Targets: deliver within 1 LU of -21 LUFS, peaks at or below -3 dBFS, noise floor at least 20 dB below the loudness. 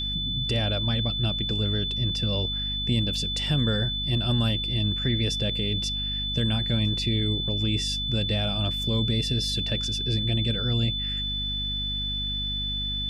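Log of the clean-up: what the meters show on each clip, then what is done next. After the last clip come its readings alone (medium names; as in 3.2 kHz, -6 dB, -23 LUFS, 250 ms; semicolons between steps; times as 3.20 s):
hum 50 Hz; highest harmonic 250 Hz; hum level -31 dBFS; steady tone 3.5 kHz; tone level -28 dBFS; loudness -25.5 LUFS; peak level -13.0 dBFS; loudness target -21.0 LUFS
-> hum notches 50/100/150/200/250 Hz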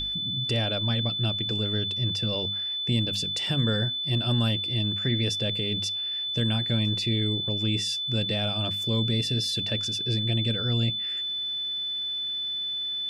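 hum not found; steady tone 3.5 kHz; tone level -28 dBFS
-> band-stop 3.5 kHz, Q 30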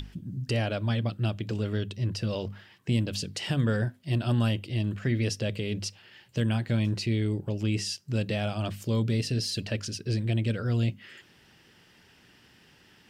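steady tone not found; loudness -29.5 LUFS; peak level -16.0 dBFS; loudness target -21.0 LUFS
-> trim +8.5 dB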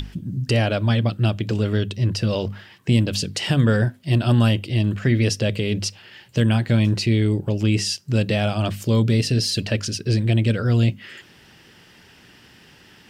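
loudness -21.0 LUFS; peak level -7.5 dBFS; noise floor -51 dBFS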